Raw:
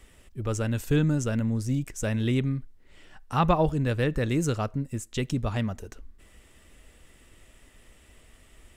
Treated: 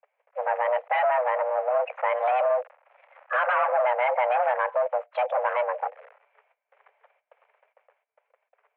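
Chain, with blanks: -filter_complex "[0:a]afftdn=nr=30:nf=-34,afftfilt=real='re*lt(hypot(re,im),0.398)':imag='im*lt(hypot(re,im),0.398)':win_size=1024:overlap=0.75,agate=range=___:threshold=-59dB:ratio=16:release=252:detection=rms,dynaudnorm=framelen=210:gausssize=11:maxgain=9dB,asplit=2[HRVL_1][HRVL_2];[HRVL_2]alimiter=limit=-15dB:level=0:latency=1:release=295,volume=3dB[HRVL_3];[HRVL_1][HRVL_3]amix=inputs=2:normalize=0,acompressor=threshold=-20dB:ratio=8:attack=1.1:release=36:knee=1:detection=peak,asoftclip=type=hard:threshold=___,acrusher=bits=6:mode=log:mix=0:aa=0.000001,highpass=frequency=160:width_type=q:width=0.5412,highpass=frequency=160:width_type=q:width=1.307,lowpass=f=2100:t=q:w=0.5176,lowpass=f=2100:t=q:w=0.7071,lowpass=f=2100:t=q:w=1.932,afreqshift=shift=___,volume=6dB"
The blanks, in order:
-17dB, -25dB, 370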